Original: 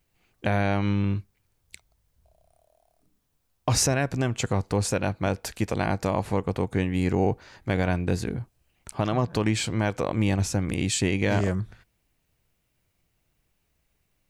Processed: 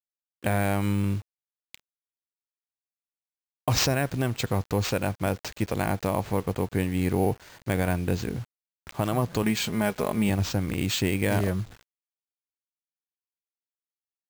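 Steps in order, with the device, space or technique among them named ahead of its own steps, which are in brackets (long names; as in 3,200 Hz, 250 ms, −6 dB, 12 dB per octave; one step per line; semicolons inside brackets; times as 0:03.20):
0:09.42–0:10.30: comb filter 4.8 ms, depth 61%
early 8-bit sampler (sample-rate reduction 11,000 Hz, jitter 0%; bit reduction 8 bits)
level −1 dB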